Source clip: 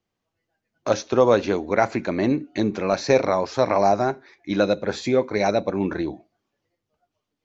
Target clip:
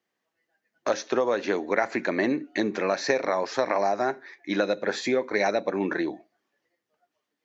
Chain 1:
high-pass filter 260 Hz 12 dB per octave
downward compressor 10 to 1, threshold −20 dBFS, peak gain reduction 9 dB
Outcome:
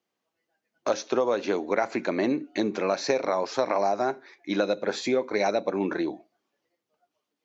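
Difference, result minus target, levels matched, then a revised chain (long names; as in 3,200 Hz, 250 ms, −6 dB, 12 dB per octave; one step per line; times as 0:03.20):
2,000 Hz band −4.0 dB
high-pass filter 260 Hz 12 dB per octave
downward compressor 10 to 1, threshold −20 dBFS, peak gain reduction 9 dB
parametric band 1,800 Hz +9 dB 0.36 octaves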